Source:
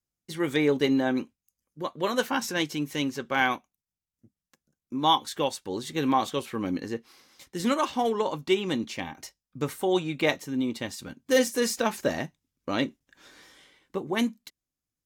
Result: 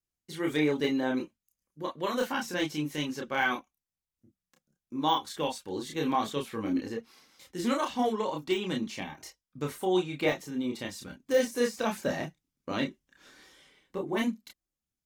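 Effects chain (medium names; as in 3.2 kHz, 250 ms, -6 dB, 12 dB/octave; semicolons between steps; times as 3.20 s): de-esser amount 70%; chorus voices 6, 0.29 Hz, delay 30 ms, depth 3.2 ms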